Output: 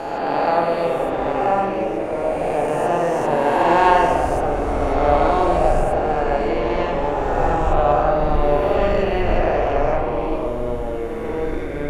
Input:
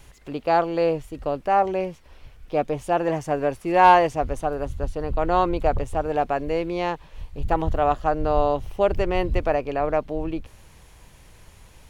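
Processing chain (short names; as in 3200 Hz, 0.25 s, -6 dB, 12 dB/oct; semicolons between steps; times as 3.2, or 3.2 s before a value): spectral swells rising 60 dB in 2.78 s; echoes that change speed 0.27 s, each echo -4 st, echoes 3, each echo -6 dB; spring tank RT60 1.3 s, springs 41/46 ms, chirp 60 ms, DRR 0 dB; gain -4 dB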